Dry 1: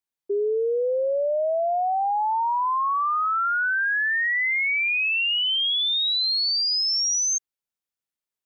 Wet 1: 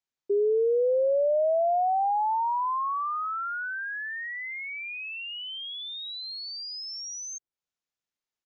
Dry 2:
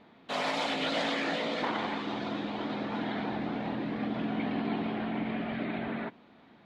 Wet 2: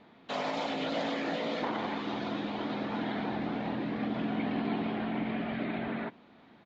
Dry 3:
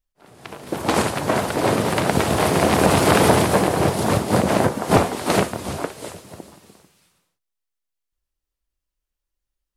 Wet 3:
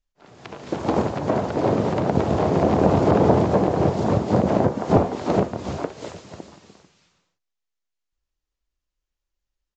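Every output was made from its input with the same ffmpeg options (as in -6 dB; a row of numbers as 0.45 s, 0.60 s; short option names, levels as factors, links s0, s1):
-filter_complex "[0:a]acrossover=split=950[s0][s1];[s1]acompressor=threshold=0.0126:ratio=6[s2];[s0][s2]amix=inputs=2:normalize=0,aresample=16000,aresample=44100"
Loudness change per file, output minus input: -6.5 LU, -1.0 LU, -2.0 LU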